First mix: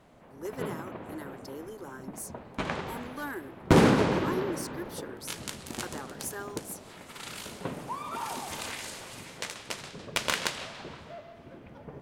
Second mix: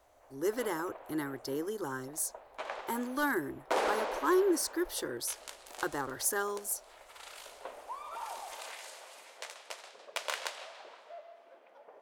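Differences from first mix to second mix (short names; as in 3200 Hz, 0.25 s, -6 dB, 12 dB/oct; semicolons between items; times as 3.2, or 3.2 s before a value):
speech +6.5 dB; background: add ladder high-pass 500 Hz, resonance 40%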